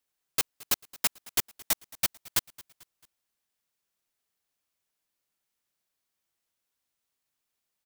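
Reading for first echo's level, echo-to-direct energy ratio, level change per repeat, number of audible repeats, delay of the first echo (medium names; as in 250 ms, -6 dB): -22.0 dB, -21.0 dB, -6.5 dB, 2, 221 ms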